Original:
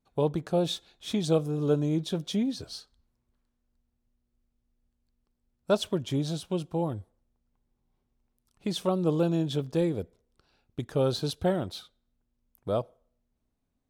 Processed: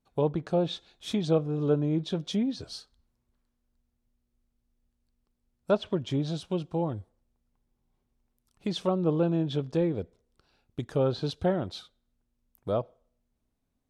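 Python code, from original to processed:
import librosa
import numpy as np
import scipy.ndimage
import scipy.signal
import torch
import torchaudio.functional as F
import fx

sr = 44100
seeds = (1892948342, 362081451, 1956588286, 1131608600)

y = fx.env_lowpass_down(x, sr, base_hz=2500.0, full_db=-22.5)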